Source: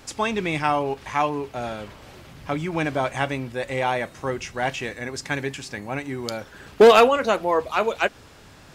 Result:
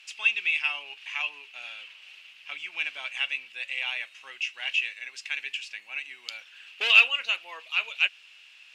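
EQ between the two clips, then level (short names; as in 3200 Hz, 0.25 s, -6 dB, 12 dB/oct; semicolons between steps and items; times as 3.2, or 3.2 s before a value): band-pass 2700 Hz, Q 7.6; tilt +3.5 dB/oct; +5.5 dB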